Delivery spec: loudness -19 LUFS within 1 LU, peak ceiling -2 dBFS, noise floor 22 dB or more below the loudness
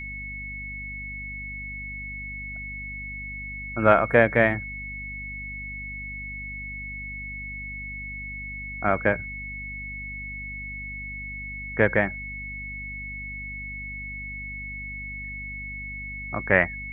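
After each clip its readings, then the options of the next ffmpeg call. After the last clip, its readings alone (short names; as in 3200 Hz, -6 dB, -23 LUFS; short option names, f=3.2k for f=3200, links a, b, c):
hum 50 Hz; harmonics up to 250 Hz; hum level -38 dBFS; steady tone 2200 Hz; tone level -34 dBFS; loudness -28.5 LUFS; peak -2.5 dBFS; loudness target -19.0 LUFS
-> -af "bandreject=f=50:t=h:w=4,bandreject=f=100:t=h:w=4,bandreject=f=150:t=h:w=4,bandreject=f=200:t=h:w=4,bandreject=f=250:t=h:w=4"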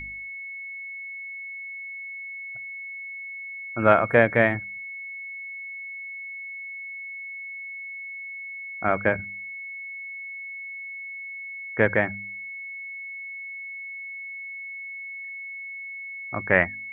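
hum none; steady tone 2200 Hz; tone level -34 dBFS
-> -af "bandreject=f=2.2k:w=30"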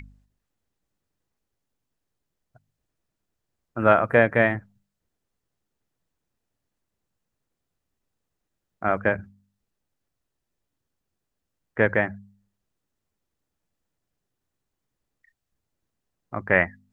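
steady tone none; loudness -22.5 LUFS; peak -2.0 dBFS; loudness target -19.0 LUFS
-> -af "volume=3.5dB,alimiter=limit=-2dB:level=0:latency=1"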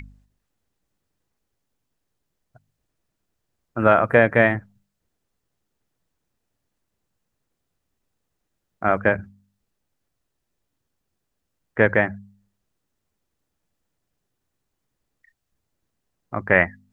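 loudness -19.5 LUFS; peak -2.0 dBFS; noise floor -79 dBFS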